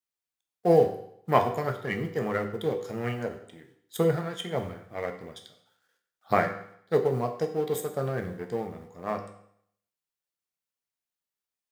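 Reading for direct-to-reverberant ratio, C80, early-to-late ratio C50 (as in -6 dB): 4.0 dB, 12.0 dB, 9.5 dB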